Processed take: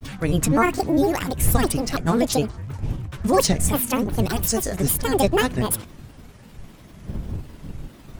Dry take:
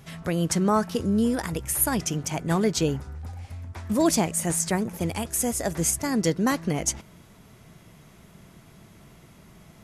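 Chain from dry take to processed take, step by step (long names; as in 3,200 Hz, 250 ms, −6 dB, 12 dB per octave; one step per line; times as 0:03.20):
wind on the microphone 85 Hz −33 dBFS
speed change +20%
granular cloud, spray 19 ms, pitch spread up and down by 7 semitones
level +5 dB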